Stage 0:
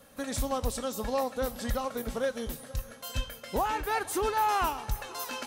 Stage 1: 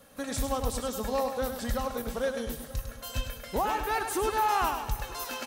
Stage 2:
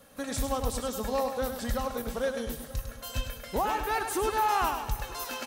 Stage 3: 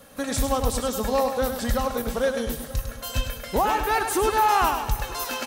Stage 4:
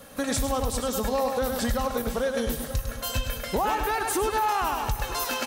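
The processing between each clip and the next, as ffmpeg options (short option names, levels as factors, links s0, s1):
-af "aecho=1:1:102|204|306|408:0.422|0.16|0.0609|0.0231"
-af anull
-af "acontrast=66"
-af "alimiter=limit=0.106:level=0:latency=1:release=151,volume=1.33"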